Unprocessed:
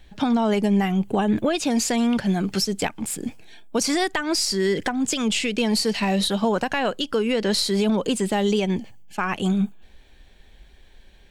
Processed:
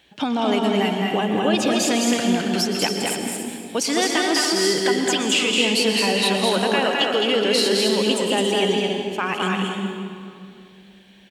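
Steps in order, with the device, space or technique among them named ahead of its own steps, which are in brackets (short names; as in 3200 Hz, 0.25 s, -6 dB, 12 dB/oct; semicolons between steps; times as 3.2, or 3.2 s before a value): stadium PA (HPF 180 Hz 12 dB/oct; bell 2900 Hz +7 dB 0.43 oct; loudspeakers at several distances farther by 73 m -3 dB, 96 m -8 dB; reverb RT60 2.3 s, pre-delay 0.113 s, DRR 5 dB); bell 200 Hz -4 dB 0.56 oct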